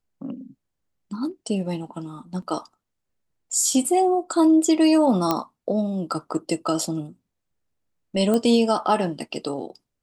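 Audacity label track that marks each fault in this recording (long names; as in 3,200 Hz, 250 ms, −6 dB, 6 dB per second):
2.420000	2.420000	drop-out 3.8 ms
5.310000	5.310000	click −7 dBFS
8.340000	8.340000	click −12 dBFS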